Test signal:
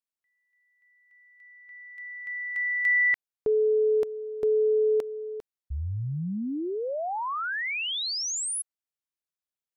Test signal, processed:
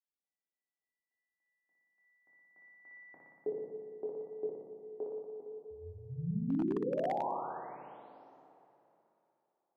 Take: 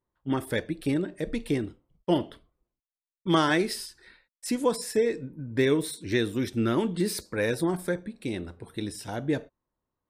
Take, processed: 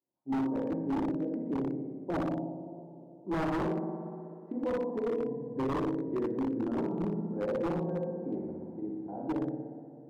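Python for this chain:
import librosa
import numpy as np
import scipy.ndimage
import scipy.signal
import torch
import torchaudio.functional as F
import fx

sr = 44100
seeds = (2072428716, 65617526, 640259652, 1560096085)

y = scipy.signal.sosfilt(scipy.signal.cheby1(3, 1.0, [140.0, 820.0], 'bandpass', fs=sr, output='sos'), x)
y = fx.hum_notches(y, sr, base_hz=50, count=9)
y = fx.room_flutter(y, sr, wall_m=10.2, rt60_s=1.4)
y = fx.rev_double_slope(y, sr, seeds[0], early_s=0.42, late_s=3.2, knee_db=-15, drr_db=-1.5)
y = 10.0 ** (-17.0 / 20.0) * (np.abs((y / 10.0 ** (-17.0 / 20.0) + 3.0) % 4.0 - 2.0) - 1.0)
y = F.gain(torch.from_numpy(y), -8.5).numpy()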